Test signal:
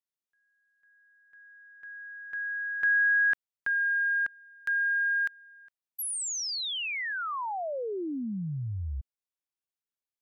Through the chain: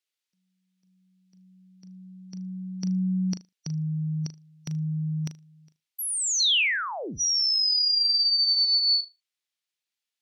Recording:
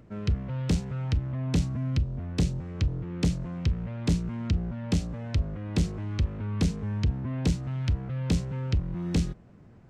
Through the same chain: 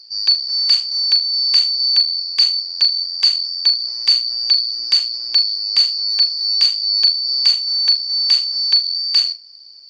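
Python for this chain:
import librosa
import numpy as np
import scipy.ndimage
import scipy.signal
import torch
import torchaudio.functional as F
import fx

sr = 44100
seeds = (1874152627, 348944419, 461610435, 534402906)

y = fx.band_shuffle(x, sr, order='2341')
y = fx.weighting(y, sr, curve='D')
y = fx.room_flutter(y, sr, wall_m=6.6, rt60_s=0.21)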